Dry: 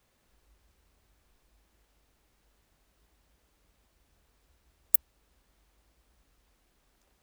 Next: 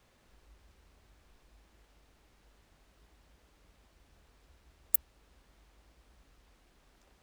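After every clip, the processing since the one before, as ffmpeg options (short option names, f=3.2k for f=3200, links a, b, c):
-af "highshelf=f=8.8k:g=-11,volume=5.5dB"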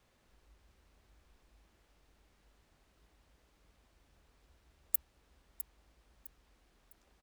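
-af "aecho=1:1:656|1312|1968:0.282|0.0902|0.0289,volume=-4.5dB"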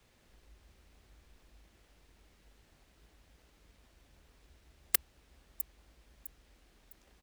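-filter_complex "[0:a]acrossover=split=140|1100|7300[a][b][c][d];[b]acrusher=samples=25:mix=1:aa=0.000001:lfo=1:lforange=15:lforate=2.5[e];[d]aeval=exprs='(mod(8.41*val(0)+1,2)-1)/8.41':c=same[f];[a][e][c][f]amix=inputs=4:normalize=0,volume=5dB"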